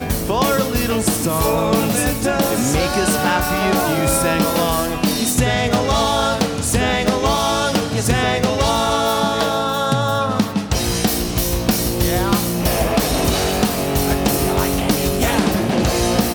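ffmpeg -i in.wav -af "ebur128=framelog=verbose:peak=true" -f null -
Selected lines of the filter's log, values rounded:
Integrated loudness:
  I:         -17.5 LUFS
  Threshold: -27.5 LUFS
Loudness range:
  LRA:         1.3 LU
  Threshold: -37.5 LUFS
  LRA low:   -18.2 LUFS
  LRA high:  -17.0 LUFS
True peak:
  Peak:       -0.8 dBFS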